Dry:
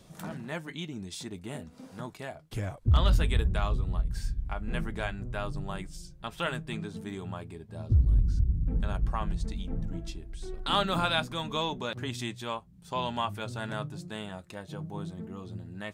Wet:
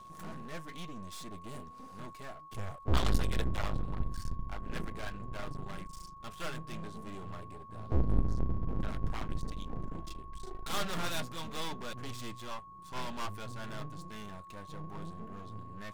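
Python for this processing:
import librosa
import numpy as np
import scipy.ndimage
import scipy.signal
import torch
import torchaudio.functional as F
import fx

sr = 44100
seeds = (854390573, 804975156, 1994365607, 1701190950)

y = fx.cheby_harmonics(x, sr, harmonics=(4, 8), levels_db=(-10, -25), full_scale_db=-13.5)
y = np.maximum(y, 0.0)
y = y + 10.0 ** (-49.0 / 20.0) * np.sin(2.0 * np.pi * 1100.0 * np.arange(len(y)) / sr)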